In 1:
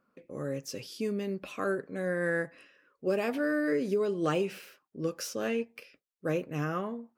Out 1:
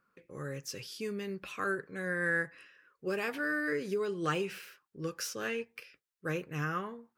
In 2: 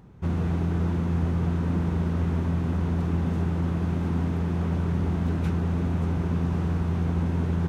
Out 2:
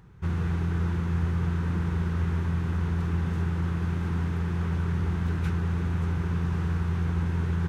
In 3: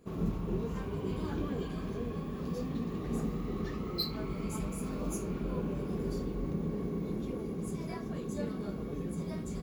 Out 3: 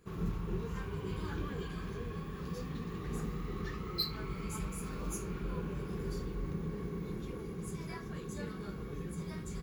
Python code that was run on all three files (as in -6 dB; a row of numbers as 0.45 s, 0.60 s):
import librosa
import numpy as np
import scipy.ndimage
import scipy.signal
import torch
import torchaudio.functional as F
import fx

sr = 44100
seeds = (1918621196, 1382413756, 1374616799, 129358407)

y = fx.graphic_eq_15(x, sr, hz=(250, 630, 1600), db=(-10, -10, 4))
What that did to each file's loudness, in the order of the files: -3.0 LU, -2.0 LU, -3.5 LU